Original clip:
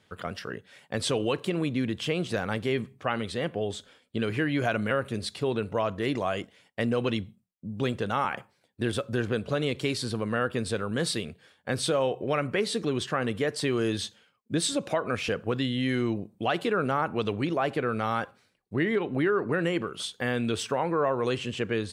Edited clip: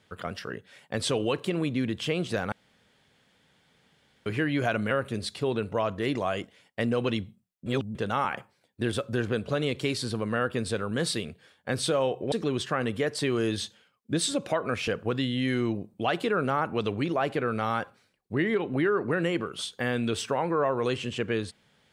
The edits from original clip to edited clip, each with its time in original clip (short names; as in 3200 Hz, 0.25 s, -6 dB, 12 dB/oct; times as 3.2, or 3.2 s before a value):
2.52–4.26 room tone
7.66–7.95 reverse
12.32–12.73 cut